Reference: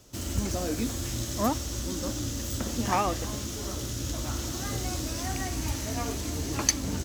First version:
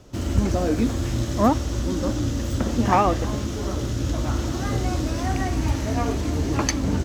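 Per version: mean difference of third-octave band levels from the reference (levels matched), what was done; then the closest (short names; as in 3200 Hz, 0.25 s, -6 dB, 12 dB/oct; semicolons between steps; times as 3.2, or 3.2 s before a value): 5.0 dB: LPF 1600 Hz 6 dB/oct; gain +9 dB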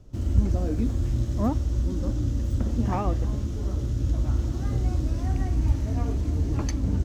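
10.0 dB: tilt -4 dB/oct; gain -5 dB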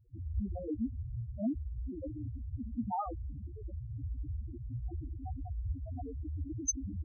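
31.0 dB: loudest bins only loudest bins 2; gain -1.5 dB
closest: first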